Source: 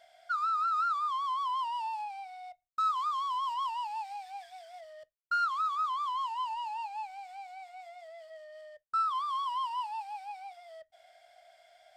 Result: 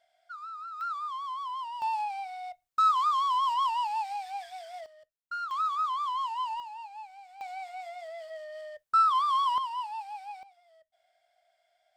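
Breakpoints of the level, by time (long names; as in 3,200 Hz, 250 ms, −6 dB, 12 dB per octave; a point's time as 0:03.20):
−11 dB
from 0:00.81 −3.5 dB
from 0:01.82 +6 dB
from 0:04.86 −6 dB
from 0:05.51 +2 dB
from 0:06.60 −5 dB
from 0:07.41 +7 dB
from 0:09.58 +0.5 dB
from 0:10.43 −12 dB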